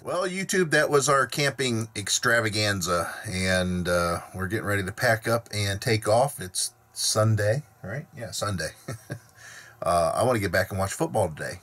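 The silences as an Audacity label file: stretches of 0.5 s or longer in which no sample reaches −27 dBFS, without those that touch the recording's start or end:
9.130000	9.820000	silence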